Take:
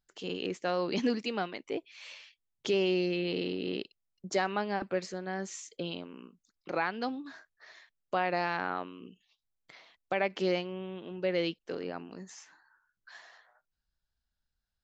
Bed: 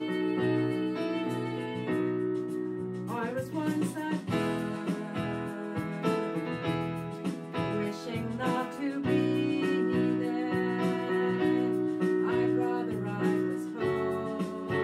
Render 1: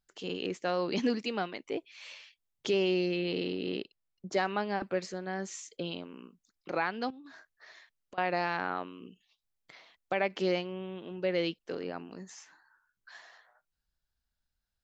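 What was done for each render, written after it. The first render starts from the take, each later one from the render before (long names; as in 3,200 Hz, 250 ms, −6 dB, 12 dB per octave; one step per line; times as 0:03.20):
0:03.79–0:04.37: low-pass filter 3,400 Hz 6 dB per octave
0:07.10–0:08.18: downward compressor 10 to 1, threshold −47 dBFS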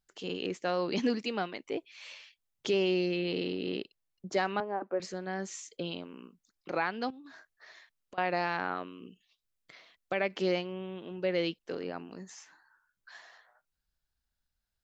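0:04.60–0:05.00: flat-topped band-pass 600 Hz, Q 0.64
0:08.74–0:10.33: parametric band 860 Hz −8 dB 0.31 octaves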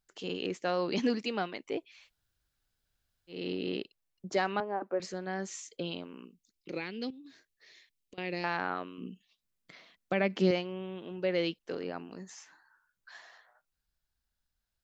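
0:01.98–0:03.39: fill with room tone, crossfade 0.24 s
0:06.25–0:08.44: flat-topped bell 1,000 Hz −15.5 dB
0:08.98–0:10.51: parametric band 200 Hz +9.5 dB 1.1 octaves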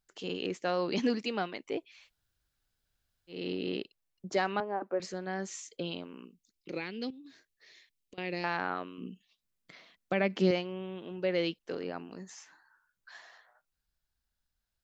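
no processing that can be heard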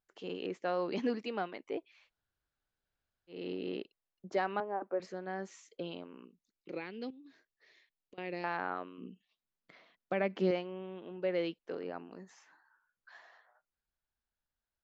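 low-pass filter 1,300 Hz 6 dB per octave
low-shelf EQ 220 Hz −10.5 dB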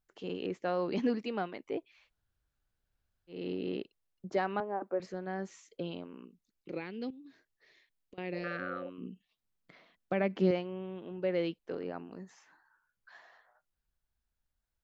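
low-shelf EQ 170 Hz +11.5 dB
0:08.37–0:08.87: healed spectral selection 430–1,100 Hz before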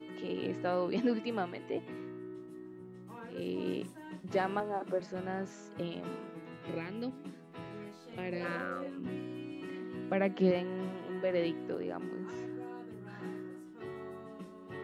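mix in bed −14.5 dB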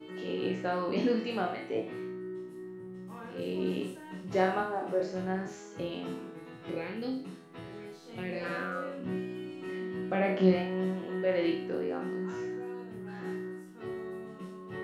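peak hold with a decay on every bin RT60 0.49 s
on a send: flutter between parallel walls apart 4.6 metres, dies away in 0.35 s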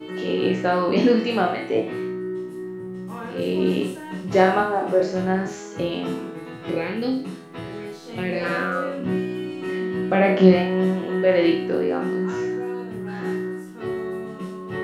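level +11 dB
brickwall limiter −2 dBFS, peak gain reduction 1 dB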